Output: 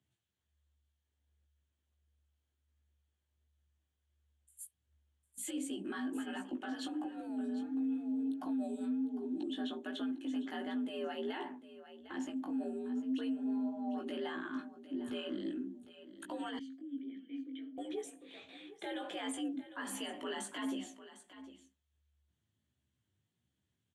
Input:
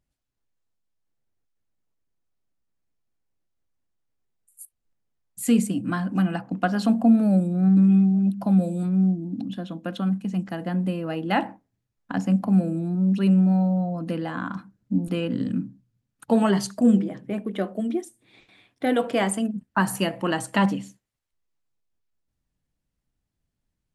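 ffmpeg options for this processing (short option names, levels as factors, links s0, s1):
-filter_complex "[0:a]lowpass=7100,highshelf=f=3900:g=9,acompressor=threshold=0.0316:ratio=2,equalizer=f=1600:t=o:w=0.33:g=5,equalizer=f=3150:t=o:w=0.33:g=9,equalizer=f=5000:t=o:w=0.33:g=-10,afreqshift=72,alimiter=level_in=1.58:limit=0.0631:level=0:latency=1:release=18,volume=0.631,aecho=1:1:753:0.188,flanger=delay=15:depth=4.6:speed=1.4,asettb=1/sr,asplit=3[s0][s1][s2];[s0]atrim=end=16.594[s3];[s1]atrim=start=16.59:end=17.78,asetpts=PTS-STARTPTS,afade=t=in:d=0.004:c=qsin,afade=t=out:st=1.186:d=0.004:c=qsin,asplit=3[s4][s5][s6];[s4]bandpass=f=270:t=q:w=8,volume=1[s7];[s5]bandpass=f=2290:t=q:w=8,volume=0.501[s8];[s6]bandpass=f=3010:t=q:w=8,volume=0.355[s9];[s7][s8][s9]amix=inputs=3:normalize=0[s10];[s2]atrim=start=17.776[s11];[s3][s10]acrossfade=d=0.004:c1=hsin:c2=qsin[s12];[s12][s11]acrossfade=d=0.004:c1=qsin:c2=hsin,volume=0.794"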